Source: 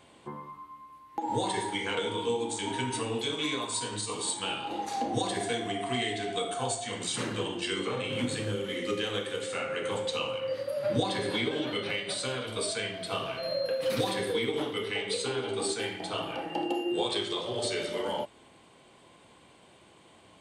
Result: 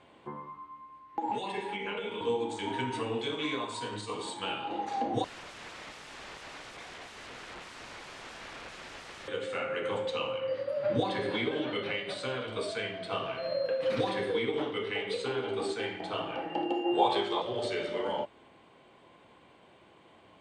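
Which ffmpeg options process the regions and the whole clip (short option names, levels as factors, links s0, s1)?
-filter_complex "[0:a]asettb=1/sr,asplit=3[s0][s1][s2];[s0]atrim=end=1.314[s3];[s1]atrim=start=1.31:end=2.21,asetpts=PTS-STARTPTS,afade=t=in:d=0.004:c=qsin,afade=t=out:st=0.896:d=0.004:c=qsin,equalizer=f=2600:t=o:w=0.31:g=14.5,acrossover=split=110|1200[s4][s5][s6];[s4]acompressor=threshold=0.00126:ratio=4[s7];[s5]acompressor=threshold=0.0158:ratio=4[s8];[s6]acompressor=threshold=0.00891:ratio=4[s9];[s7][s8][s9]amix=inputs=3:normalize=0,aecho=1:1:4.9:0.82,atrim=end_sample=39690[s10];[s2]atrim=start=2.206[s11];[s3][s10]acrossfade=d=0.004:c1=hsin:c2=qsin[s12];[s12][s11]acrossfade=d=0.004:c1=qsin:c2=hsin,asettb=1/sr,asplit=3[s13][s14][s15];[s13]atrim=end=5.244[s16];[s14]atrim=start=5.24:end=9.28,asetpts=PTS-STARTPTS,afade=t=in:d=0.004:c=qsin,afade=t=out:st=4.036:d=0.004:c=qsin,acrossover=split=380 3000:gain=0.126 1 0.224[s17][s18][s19];[s17][s18][s19]amix=inputs=3:normalize=0,aecho=1:1:115|230|345|460|575|690:0.316|0.171|0.0922|0.0498|0.0269|0.0145,atrim=end_sample=178164,aeval=exprs='(mod(70.8*val(0)+1,2)-1)/70.8':c=same[s20];[s15]atrim=start=9.276[s21];[s16][s20]acrossfade=d=0.004:c1=hsin:c2=qsin[s22];[s22][s21]acrossfade=d=0.004:c1=qsin:c2=hsin,asettb=1/sr,asplit=3[s23][s24][s25];[s23]atrim=end=16.844[s26];[s24]atrim=start=16.84:end=17.42,asetpts=PTS-STARTPTS,afade=t=in:d=0.004:c=qsin,afade=t=out:st=0.576:d=0.004:c=qsin,equalizer=f=840:t=o:w=0.69:g=11.5,asplit=2[s27][s28];[s28]adelay=15,volume=0.473[s29];[s27][s29]amix=inputs=2:normalize=0,atrim=end_sample=25578[s30];[s25]atrim=start=17.416[s31];[s26][s30]acrossfade=d=0.004:c1=hsin:c2=qsin[s32];[s32][s31]acrossfade=d=0.004:c1=qsin:c2=hsin,lowpass=f=8800:w=0.5412,lowpass=f=8800:w=1.3066,bass=f=250:g=-3,treble=f=4000:g=-13"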